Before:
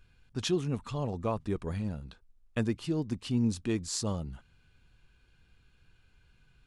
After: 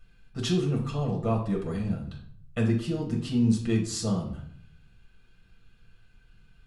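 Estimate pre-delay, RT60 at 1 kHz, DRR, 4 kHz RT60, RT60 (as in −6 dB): 6 ms, 0.55 s, −1.5 dB, 0.45 s, 0.60 s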